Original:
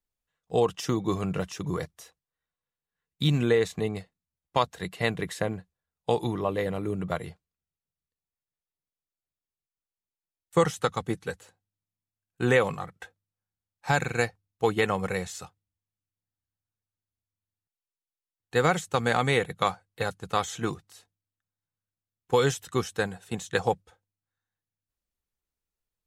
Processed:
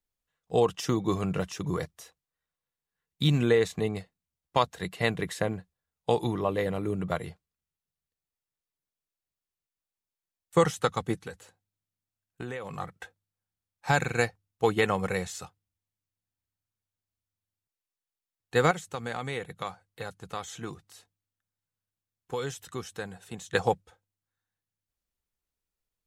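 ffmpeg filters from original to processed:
ffmpeg -i in.wav -filter_complex "[0:a]asettb=1/sr,asplit=3[link_01][link_02][link_03];[link_01]atrim=end=11.204[link_04];[link_02]atrim=start=11.2:end=12.75,asetpts=PTS-STARTPTS,afade=type=in:duration=0.004:curve=qsin,afade=type=out:start_time=1.546:duration=0.004:curve=qsin,acompressor=threshold=-34dB:ratio=6:attack=3.2:release=140:knee=1:detection=peak[link_05];[link_03]atrim=start=12.746[link_06];[link_04][link_05]acrossfade=duration=0.004:curve1=hsin:curve2=qsin[link_07];[link_07][link_06]acrossfade=duration=0.004:curve1=qsin:curve2=hsin,asettb=1/sr,asplit=3[link_08][link_09][link_10];[link_08]atrim=end=18.714[link_11];[link_09]atrim=start=18.71:end=23.54,asetpts=PTS-STARTPTS,afade=type=in:duration=0.004:curve=qsin,afade=type=out:start_time=4.826:duration=0.004:curve=qsin,acompressor=threshold=-47dB:ratio=1.5:attack=3.2:release=140:knee=1:detection=peak[link_12];[link_10]atrim=start=23.536[link_13];[link_11][link_12]acrossfade=duration=0.004:curve1=hsin:curve2=qsin[link_14];[link_14][link_13]acrossfade=duration=0.004:curve1=qsin:curve2=hsin" out.wav

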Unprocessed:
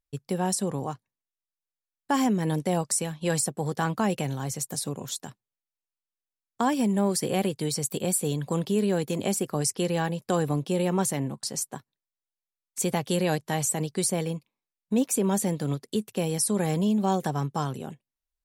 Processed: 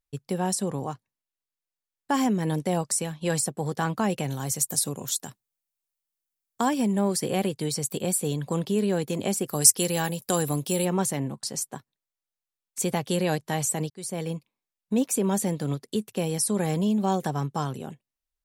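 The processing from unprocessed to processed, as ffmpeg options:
ffmpeg -i in.wav -filter_complex "[0:a]asettb=1/sr,asplit=3[link_01][link_02][link_03];[link_01]atrim=end=4.304[link_04];[link_02]atrim=start=4.3:end=6.69,asetpts=PTS-STARTPTS,afade=type=in:duration=0.004:curve=qsin,afade=type=out:start_time=2.386:duration=0.004:curve=qsin,highshelf=frequency=6600:gain=11[link_05];[link_03]atrim=start=6.686[link_06];[link_04][link_05]acrossfade=duration=0.004:curve1=hsin:curve2=qsin[link_07];[link_07][link_06]acrossfade=duration=0.004:curve1=qsin:curve2=hsin,asplit=3[link_08][link_09][link_10];[link_08]afade=type=out:start_time=9.47:duration=0.02[link_11];[link_09]aemphasis=mode=production:type=75fm,afade=type=in:start_time=9.47:duration=0.02,afade=type=out:start_time=10.84:duration=0.02[link_12];[link_10]afade=type=in:start_time=10.84:duration=0.02[link_13];[link_11][link_12][link_13]amix=inputs=3:normalize=0,asplit=2[link_14][link_15];[link_14]atrim=end=13.9,asetpts=PTS-STARTPTS,afade=type=out:start_time=13.896:duration=0.004:curve=hsin[link_16];[link_15]atrim=start=13.9,asetpts=PTS-STARTPTS,afade=type=in:duration=0.42[link_17];[link_16][link_17]concat=n=2:v=0:a=1" out.wav

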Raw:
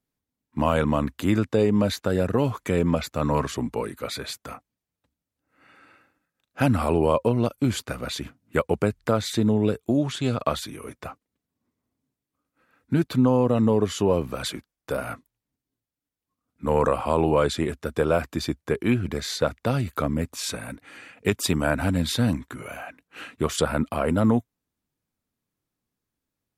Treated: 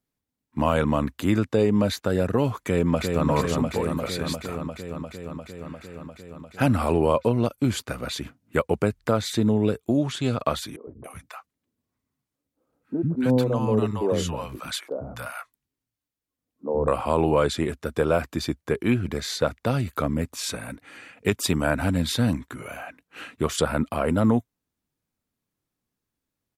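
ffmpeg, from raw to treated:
ffmpeg -i in.wav -filter_complex "[0:a]asplit=2[link_01][link_02];[link_02]afade=type=in:start_time=2.6:duration=0.01,afade=type=out:start_time=3.27:duration=0.01,aecho=0:1:350|700|1050|1400|1750|2100|2450|2800|3150|3500|3850|4200:0.630957|0.504766|0.403813|0.32305|0.25844|0.206752|0.165402|0.132321|0.105857|0.0846857|0.0677485|0.0541988[link_03];[link_01][link_03]amix=inputs=2:normalize=0,asettb=1/sr,asplit=3[link_04][link_05][link_06];[link_04]atrim=end=10.764[link_07];[link_05]atrim=start=10.76:end=16.88,asetpts=PTS-STARTPTS,afade=type=in:duration=0.004:curve=qsin,afade=type=out:start_time=6.116:duration=0.004:curve=qsin,acrossover=split=240|750[link_08][link_09][link_10];[link_08]adelay=110[link_11];[link_10]adelay=280[link_12];[link_11][link_09][link_12]amix=inputs=3:normalize=0,atrim=end_sample=269892[link_13];[link_06]atrim=start=16.876[link_14];[link_07][link_13]acrossfade=duration=0.004:curve1=hsin:curve2=qsin[link_15];[link_15][link_14]acrossfade=duration=0.004:curve1=qsin:curve2=hsin" out.wav

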